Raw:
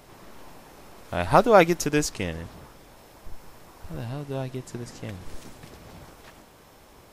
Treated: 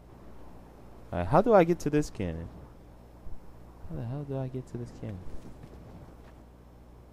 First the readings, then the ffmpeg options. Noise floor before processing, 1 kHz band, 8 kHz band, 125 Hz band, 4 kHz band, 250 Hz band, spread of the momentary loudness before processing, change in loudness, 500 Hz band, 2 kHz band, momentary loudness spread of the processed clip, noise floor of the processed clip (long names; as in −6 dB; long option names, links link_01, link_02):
−52 dBFS, −6.5 dB, −15.0 dB, −1.5 dB, −14.0 dB, −2.0 dB, 21 LU, −5.0 dB, −4.0 dB, −11.0 dB, 23 LU, −53 dBFS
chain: -af "tiltshelf=frequency=1200:gain=7,aeval=exprs='val(0)+0.00631*(sin(2*PI*60*n/s)+sin(2*PI*2*60*n/s)/2+sin(2*PI*3*60*n/s)/3+sin(2*PI*4*60*n/s)/4+sin(2*PI*5*60*n/s)/5)':channel_layout=same,volume=-8.5dB"